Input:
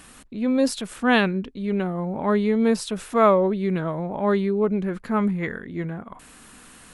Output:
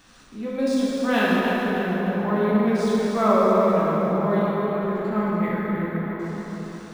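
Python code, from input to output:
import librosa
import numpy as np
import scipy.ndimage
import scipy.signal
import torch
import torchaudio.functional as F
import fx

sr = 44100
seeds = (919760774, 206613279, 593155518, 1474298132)

y = fx.highpass(x, sr, hz=600.0, slope=12, at=(4.39, 4.83))
y = fx.echo_feedback(y, sr, ms=300, feedback_pct=49, wet_db=-9.5)
y = fx.rev_plate(y, sr, seeds[0], rt60_s=4.3, hf_ratio=0.55, predelay_ms=0, drr_db=-8.0)
y = np.interp(np.arange(len(y)), np.arange(len(y))[::3], y[::3])
y = F.gain(torch.from_numpy(y), -8.0).numpy()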